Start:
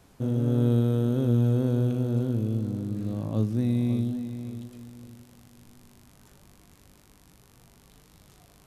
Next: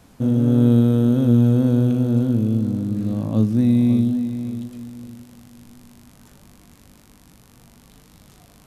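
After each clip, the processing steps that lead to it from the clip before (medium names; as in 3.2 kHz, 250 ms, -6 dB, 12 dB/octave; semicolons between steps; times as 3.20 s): peaking EQ 230 Hz +5.5 dB 0.49 oct; band-stop 390 Hz, Q 12; trim +5.5 dB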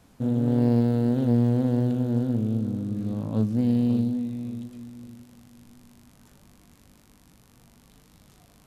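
loudspeaker Doppler distortion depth 0.33 ms; trim -6 dB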